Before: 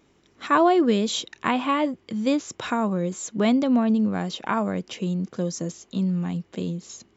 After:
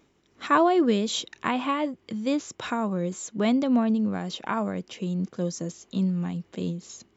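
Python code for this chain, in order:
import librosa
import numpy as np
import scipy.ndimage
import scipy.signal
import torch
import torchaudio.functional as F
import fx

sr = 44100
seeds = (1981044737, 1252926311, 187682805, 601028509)

y = fx.am_noise(x, sr, seeds[0], hz=5.7, depth_pct=50)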